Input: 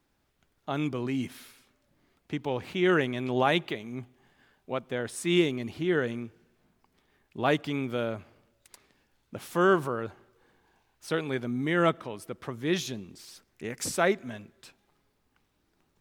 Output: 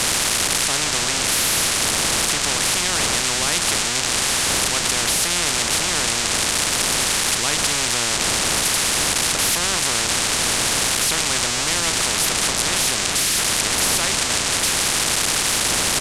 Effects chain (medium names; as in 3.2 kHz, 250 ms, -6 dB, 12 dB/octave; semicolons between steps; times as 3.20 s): zero-crossing glitches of -20 dBFS; wind noise 190 Hz -26 dBFS; low-pass 8.1 kHz 24 dB/octave; doubling 34 ms -11 dB; spectrum-flattening compressor 10:1; trim -1.5 dB